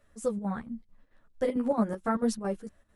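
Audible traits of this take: chopped level 4.5 Hz, depth 65%, duty 70%; a shimmering, thickened sound

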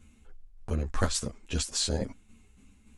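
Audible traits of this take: tremolo saw down 3.5 Hz, depth 50%; a shimmering, thickened sound

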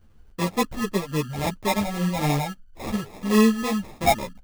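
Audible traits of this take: phasing stages 12, 3.6 Hz, lowest notch 340–3400 Hz; aliases and images of a low sample rate 1500 Hz, jitter 0%; a shimmering, thickened sound

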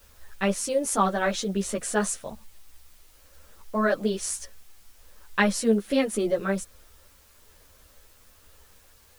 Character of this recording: tremolo triangle 1.2 Hz, depth 40%; a quantiser's noise floor 10-bit, dither triangular; a shimmering, thickened sound

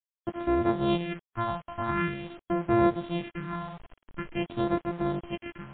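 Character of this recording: a buzz of ramps at a fixed pitch in blocks of 128 samples; phasing stages 4, 0.46 Hz, lowest notch 360–3100 Hz; a quantiser's noise floor 8-bit, dither none; MP3

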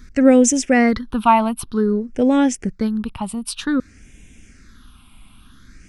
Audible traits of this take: phasing stages 6, 0.53 Hz, lowest notch 450–1200 Hz

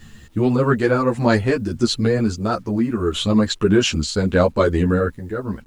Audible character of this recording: random-step tremolo; a quantiser's noise floor 10-bit, dither none; a shimmering, thickened sound

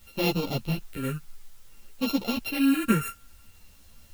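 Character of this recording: a buzz of ramps at a fixed pitch in blocks of 32 samples; phasing stages 4, 0.57 Hz, lowest notch 760–1600 Hz; a quantiser's noise floor 10-bit, dither triangular; a shimmering, thickened sound

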